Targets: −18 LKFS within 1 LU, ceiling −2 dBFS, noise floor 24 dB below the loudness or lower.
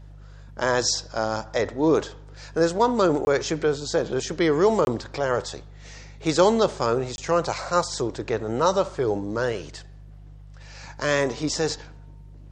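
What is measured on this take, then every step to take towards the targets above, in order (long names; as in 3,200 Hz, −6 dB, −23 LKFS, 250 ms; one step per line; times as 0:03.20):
number of dropouts 3; longest dropout 21 ms; mains hum 50 Hz; hum harmonics up to 150 Hz; level of the hum −41 dBFS; integrated loudness −24.0 LKFS; sample peak −5.5 dBFS; target loudness −18.0 LKFS
→ repair the gap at 0:03.25/0:04.85/0:07.16, 21 ms
hum removal 50 Hz, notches 3
level +6 dB
brickwall limiter −2 dBFS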